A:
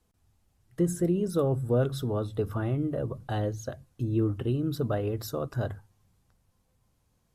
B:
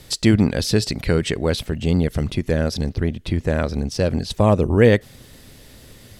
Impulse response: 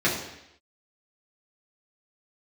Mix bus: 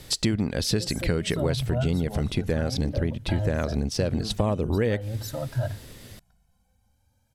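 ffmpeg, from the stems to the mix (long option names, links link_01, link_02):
-filter_complex "[0:a]aecho=1:1:1.3:0.98,asplit=2[link_01][link_02];[link_02]adelay=2.3,afreqshift=0.47[link_03];[link_01][link_03]amix=inputs=2:normalize=1,volume=1.5dB[link_04];[1:a]volume=-0.5dB[link_05];[link_04][link_05]amix=inputs=2:normalize=0,acompressor=threshold=-21dB:ratio=5"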